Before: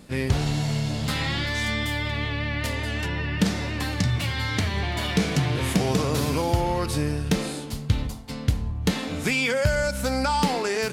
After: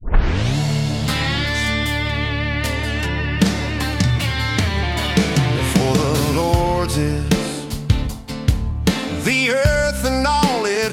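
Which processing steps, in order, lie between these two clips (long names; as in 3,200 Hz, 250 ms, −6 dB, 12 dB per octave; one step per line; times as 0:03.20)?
turntable start at the beginning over 0.57 s
level +6.5 dB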